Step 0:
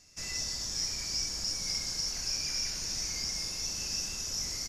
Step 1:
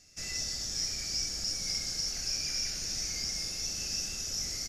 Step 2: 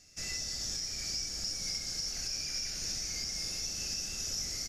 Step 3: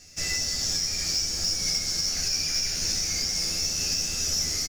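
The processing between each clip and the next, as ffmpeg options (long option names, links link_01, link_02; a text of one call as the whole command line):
ffmpeg -i in.wav -af "equalizer=frequency=1000:width=6.4:gain=-13.5" out.wav
ffmpeg -i in.wav -af "alimiter=level_in=1.5dB:limit=-24dB:level=0:latency=1:release=311,volume=-1.5dB" out.wav
ffmpeg -i in.wav -filter_complex "[0:a]acrusher=bits=5:mode=log:mix=0:aa=0.000001,asplit=2[link_01][link_02];[link_02]adelay=12,volume=-4dB[link_03];[link_01][link_03]amix=inputs=2:normalize=0,volume=8dB" out.wav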